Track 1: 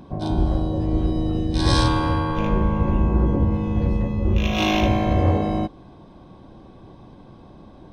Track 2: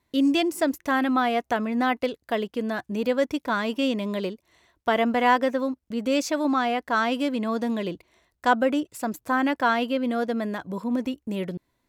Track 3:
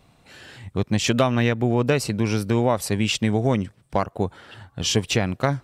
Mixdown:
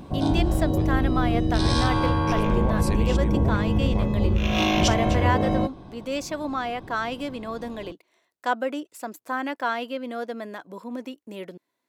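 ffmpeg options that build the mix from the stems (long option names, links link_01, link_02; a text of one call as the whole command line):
ffmpeg -i stem1.wav -i stem2.wav -i stem3.wav -filter_complex "[0:a]acompressor=threshold=-19dB:ratio=6,volume=1.5dB[link_01];[1:a]highpass=290,volume=-4dB,asplit=2[link_02][link_03];[2:a]alimiter=limit=-13.5dB:level=0:latency=1:release=140,volume=1.5dB,asplit=3[link_04][link_05][link_06];[link_04]atrim=end=0.82,asetpts=PTS-STARTPTS,afade=type=out:start_time=0.816:duration=0.004:curve=hsin[link_07];[link_05]atrim=start=0.82:end=2.27,asetpts=PTS-STARTPTS,volume=0[link_08];[link_06]atrim=start=2.27,asetpts=PTS-STARTPTS,afade=type=in:duration=0.004:curve=hsin[link_09];[link_07][link_08][link_09]concat=n=3:v=0:a=1[link_10];[link_03]apad=whole_len=248704[link_11];[link_10][link_11]sidechaincompress=threshold=-38dB:ratio=5:attack=8:release=390[link_12];[link_01][link_02][link_12]amix=inputs=3:normalize=0" out.wav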